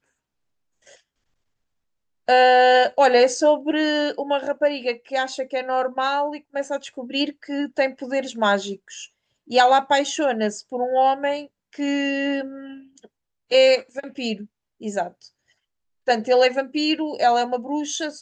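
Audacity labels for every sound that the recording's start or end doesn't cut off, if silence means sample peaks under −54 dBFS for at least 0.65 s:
0.830000	1.000000	sound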